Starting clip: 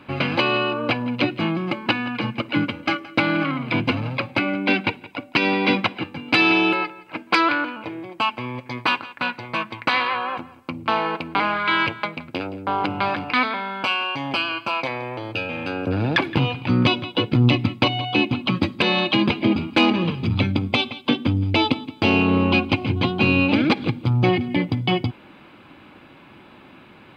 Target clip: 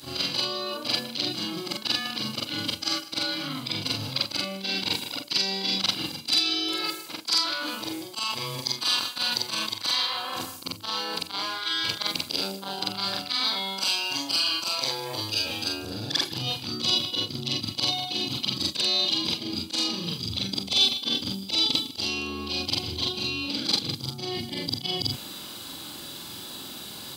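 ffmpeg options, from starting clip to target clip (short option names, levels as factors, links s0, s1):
-af "afftfilt=real='re':imag='-im':win_size=4096:overlap=0.75,areverse,acompressor=threshold=0.0141:ratio=16,areverse,adynamicequalizer=threshold=0.00224:dfrequency=2300:dqfactor=2.3:tfrequency=2300:tqfactor=2.3:attack=5:release=100:ratio=0.375:range=1.5:mode=boostabove:tftype=bell,aexciter=amount=12.5:drive=9.7:freq=3900,volume=2"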